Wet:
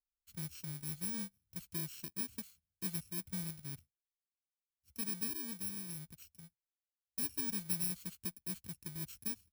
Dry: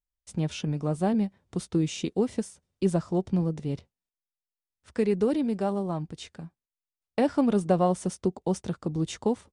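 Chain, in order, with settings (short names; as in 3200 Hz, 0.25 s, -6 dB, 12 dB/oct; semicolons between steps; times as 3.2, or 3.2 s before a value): FFT order left unsorted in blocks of 64 samples; passive tone stack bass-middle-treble 6-0-2; gain +1 dB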